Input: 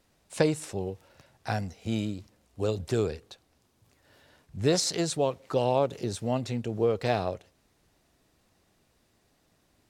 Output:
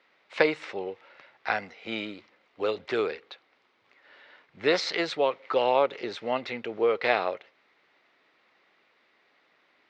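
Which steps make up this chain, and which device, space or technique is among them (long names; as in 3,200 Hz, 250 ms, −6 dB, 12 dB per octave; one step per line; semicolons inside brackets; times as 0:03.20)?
phone earpiece (loudspeaker in its box 490–3,900 Hz, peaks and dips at 680 Hz −4 dB, 1,300 Hz +4 dB, 2,100 Hz +9 dB)
level +5.5 dB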